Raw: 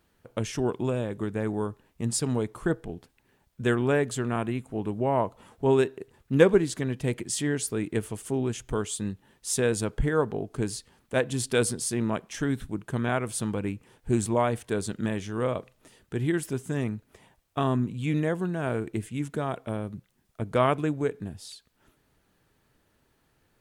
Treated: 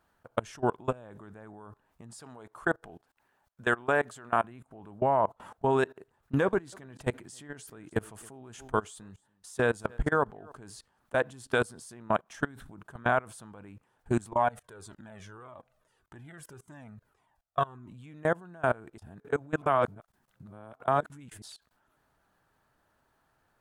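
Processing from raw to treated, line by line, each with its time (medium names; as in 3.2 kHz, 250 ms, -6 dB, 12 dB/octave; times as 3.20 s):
2.20–4.44 s: bass shelf 280 Hz -9 dB
6.44–10.52 s: delay 284 ms -21 dB
14.34–17.92 s: Shepard-style flanger falling 1.7 Hz
18.98–21.42 s: reverse
whole clip: high-order bell 1 kHz +9 dB; level held to a coarse grid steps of 24 dB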